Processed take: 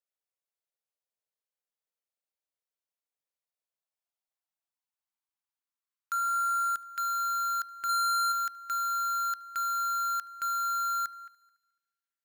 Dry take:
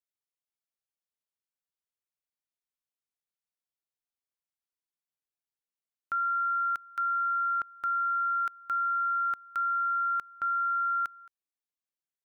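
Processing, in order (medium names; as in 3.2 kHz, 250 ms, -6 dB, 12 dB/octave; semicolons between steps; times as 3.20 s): high-pass sweep 510 Hz -> 1.5 kHz, 3.26–6.94 s; in parallel at -6 dB: integer overflow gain 23.5 dB; on the sum: multi-head delay 72 ms, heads first and third, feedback 41%, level -23.5 dB; 7.89–8.32 s: waveshaping leveller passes 5; trim -7 dB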